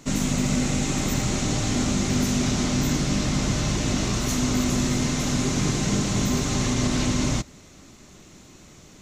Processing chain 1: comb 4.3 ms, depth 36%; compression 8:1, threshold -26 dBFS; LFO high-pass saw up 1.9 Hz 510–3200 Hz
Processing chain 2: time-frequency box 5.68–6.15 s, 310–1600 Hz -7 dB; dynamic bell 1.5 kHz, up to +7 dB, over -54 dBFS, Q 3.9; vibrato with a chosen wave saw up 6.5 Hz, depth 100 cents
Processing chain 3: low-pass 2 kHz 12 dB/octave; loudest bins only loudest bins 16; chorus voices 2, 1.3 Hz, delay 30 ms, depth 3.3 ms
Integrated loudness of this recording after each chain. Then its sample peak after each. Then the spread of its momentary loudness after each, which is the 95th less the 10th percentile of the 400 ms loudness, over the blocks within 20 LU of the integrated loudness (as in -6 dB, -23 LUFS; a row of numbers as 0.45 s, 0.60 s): -33.0 LUFS, -23.5 LUFS, -28.5 LUFS; -21.0 dBFS, -11.0 dBFS, -15.5 dBFS; 16 LU, 1 LU, 3 LU